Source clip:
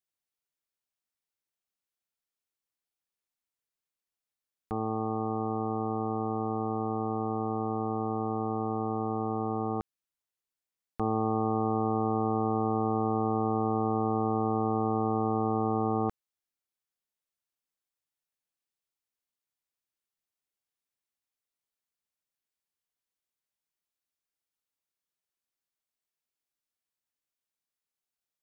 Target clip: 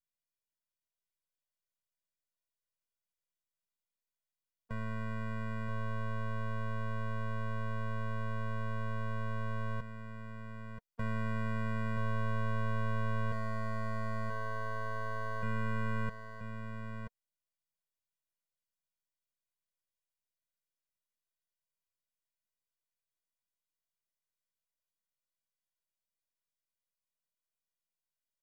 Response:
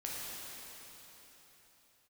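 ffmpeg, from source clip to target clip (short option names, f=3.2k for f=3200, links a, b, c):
-filter_complex "[0:a]asettb=1/sr,asplit=3[a][b][c];[a]atrim=end=13.324[d];[b]atrim=start=13.32:end=15.43,asetpts=PTS-STARTPTS,afade=t=in:d=0.004:c=qsin,afade=t=out:st=2.106:d=0.004:c=qsin,highpass=450[e];[c]atrim=start=15.426[f];[d][e]acrossfade=d=0.004:c1=hsin:c2=qsin[g];[g][f]acrossfade=d=0.004:c1=qsin:c2=hsin,aeval=exprs='max(val(0),0)':c=same,aecho=1:1:980:0.422,afftfilt=real='re*eq(mod(floor(b*sr/1024/230),2),0)':imag='im*eq(mod(floor(b*sr/1024/230),2),0)':win_size=1024:overlap=0.75"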